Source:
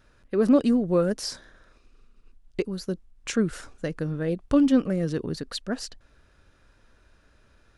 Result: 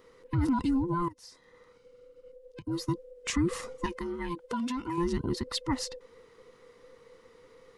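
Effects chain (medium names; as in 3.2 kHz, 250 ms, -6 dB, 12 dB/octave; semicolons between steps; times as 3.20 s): every band turned upside down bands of 500 Hz; 1.08–2.67 s: compression 10:1, threshold -44 dBFS, peak gain reduction 23 dB; peak limiter -20 dBFS, peak gain reduction 11.5 dB; gain riding 2 s; 3.86–4.98 s: bass shelf 470 Hz -9.5 dB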